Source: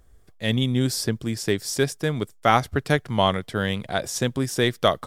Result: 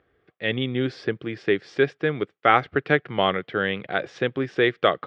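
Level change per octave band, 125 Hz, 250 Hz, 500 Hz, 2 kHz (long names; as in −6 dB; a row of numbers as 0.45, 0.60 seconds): −6.5, −2.5, +1.5, +3.5 decibels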